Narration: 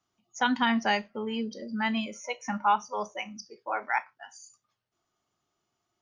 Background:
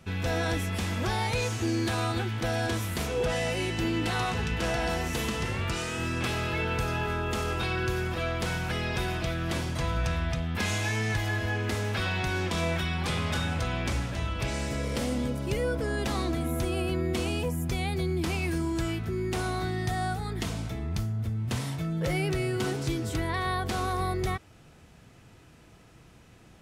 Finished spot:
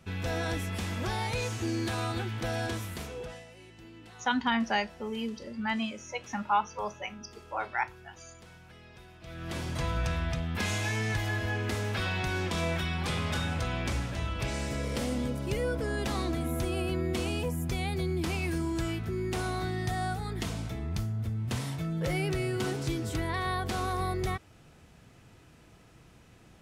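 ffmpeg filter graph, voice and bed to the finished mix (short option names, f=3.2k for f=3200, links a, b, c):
-filter_complex "[0:a]adelay=3850,volume=-2.5dB[a];[1:a]volume=16.5dB,afade=t=out:st=2.62:d=0.84:silence=0.11885,afade=t=in:st=9.2:d=0.56:silence=0.1[b];[a][b]amix=inputs=2:normalize=0"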